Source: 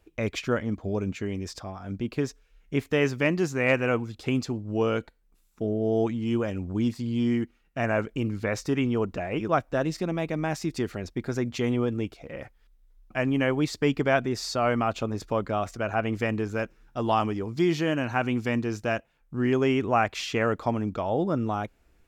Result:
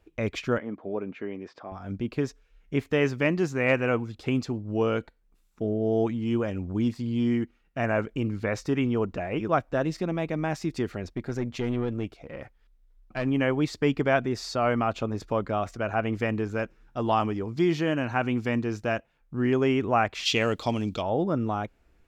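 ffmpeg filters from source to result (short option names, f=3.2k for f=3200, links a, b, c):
-filter_complex "[0:a]asettb=1/sr,asplit=3[a][b][c];[a]atrim=end=0.584[d];[b]atrim=start=0.58:end=1.72,asetpts=PTS-STARTPTS,afade=t=in:d=0.004:c=qsin,afade=t=out:st=1.136:d=0.004:c=qsin,highpass=280,lowpass=2.2k[e];[c]atrim=start=1.716[f];[d][e]acrossfade=d=0.004:c1=hsin:c2=qsin[g];[g][f]acrossfade=d=0.004:c1=qsin:c2=hsin,asettb=1/sr,asplit=3[h][i][j];[h]atrim=end=11.144[k];[i]atrim=start=11.14:end=13.26,asetpts=PTS-STARTPTS,afade=t=in:d=0.004:c=qsin,afade=t=out:st=2.116:d=0.004:c=qsin,aeval=exprs='(tanh(11.2*val(0)+0.4)-tanh(0.4))/11.2':c=same[l];[j]atrim=start=13.256[m];[k][l]acrossfade=d=0.004:c1=hsin:c2=qsin[n];[n][m]acrossfade=d=0.004:c1=qsin:c2=hsin,asplit=3[o][p][q];[o]afade=t=out:st=20.25:d=0.02[r];[p]highshelf=f=2.3k:t=q:w=1.5:g=12.5,afade=t=in:st=20.25:d=0.02,afade=t=out:st=21.01:d=0.02[s];[q]afade=t=in:st=21.01:d=0.02[t];[r][s][t]amix=inputs=3:normalize=0,highshelf=f=5.8k:g=-8"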